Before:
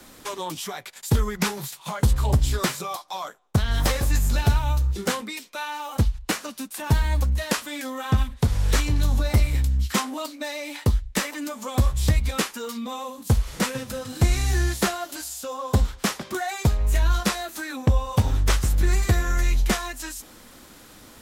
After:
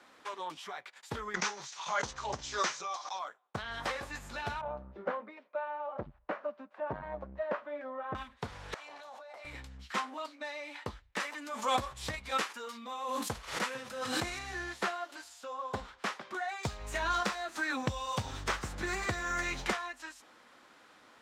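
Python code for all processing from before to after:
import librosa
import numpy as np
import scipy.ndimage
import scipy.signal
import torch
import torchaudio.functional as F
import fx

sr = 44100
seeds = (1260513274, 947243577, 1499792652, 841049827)

y = fx.chain(x, sr, fx.lowpass_res(hz=6200.0, q=5.6),
    fx.low_shelf(hz=230.0, db=-6.0),
    fx.pre_swell(db_per_s=52.0), at=(1.34, 3.19))
y = fx.chain(y, sr, fx.lowpass(hz=1300.0, slope=12),
    fx.peak_eq(hz=590.0, db=14.0, octaves=0.25),
    fx.transformer_sat(knee_hz=200.0), at=(4.61, 8.15))
y = fx.chain(y, sr, fx.highpass_res(hz=650.0, q=3.3),
    fx.level_steps(step_db=20), at=(8.74, 9.45))
y = fx.chain(y, sr, fx.high_shelf(hz=5900.0, db=9.0),
    fx.pre_swell(db_per_s=56.0), at=(11.2, 14.39))
y = fx.chain(y, sr, fx.bass_treble(bass_db=6, treble_db=10),
    fx.resample_bad(factor=2, down='filtered', up='hold'),
    fx.band_squash(depth_pct=100), at=(16.63, 19.73))
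y = scipy.signal.sosfilt(scipy.signal.butter(2, 1300.0, 'lowpass', fs=sr, output='sos'), y)
y = np.diff(y, prepend=0.0)
y = F.gain(torch.from_numpy(y), 12.0).numpy()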